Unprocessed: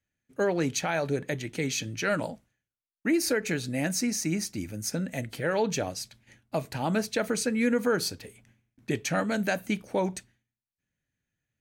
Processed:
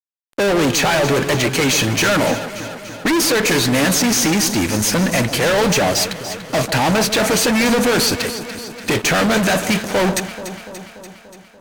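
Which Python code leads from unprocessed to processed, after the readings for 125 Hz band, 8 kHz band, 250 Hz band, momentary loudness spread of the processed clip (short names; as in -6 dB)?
+12.5 dB, +15.0 dB, +11.5 dB, 12 LU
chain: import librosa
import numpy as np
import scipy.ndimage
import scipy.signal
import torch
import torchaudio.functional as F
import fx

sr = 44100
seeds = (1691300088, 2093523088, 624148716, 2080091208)

p1 = fx.low_shelf(x, sr, hz=300.0, db=-10.0)
p2 = fx.fuzz(p1, sr, gain_db=45.0, gate_db=-52.0)
p3 = p2 + fx.echo_alternate(p2, sr, ms=145, hz=1200.0, feedback_pct=79, wet_db=-10.0, dry=0)
p4 = np.interp(np.arange(len(p3)), np.arange(len(p3))[::2], p3[::2])
y = F.gain(torch.from_numpy(p4), -1.0).numpy()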